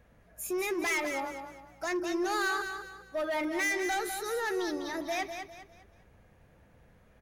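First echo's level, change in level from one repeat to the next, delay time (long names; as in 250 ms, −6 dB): −7.5 dB, −9.5 dB, 201 ms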